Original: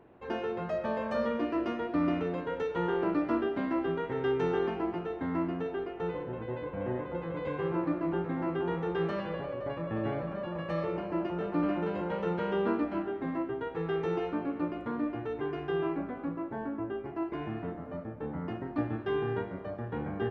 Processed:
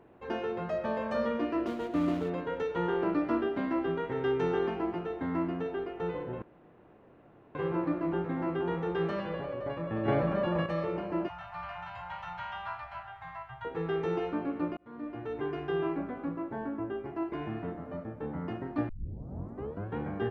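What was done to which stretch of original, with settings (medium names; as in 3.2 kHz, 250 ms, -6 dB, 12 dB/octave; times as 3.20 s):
1.66–2.30 s: median filter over 25 samples
6.42–7.55 s: room tone
10.08–10.66 s: gain +7 dB
11.28–13.65 s: elliptic band-stop 130–760 Hz
14.77–15.39 s: fade in
18.89 s: tape start 1.07 s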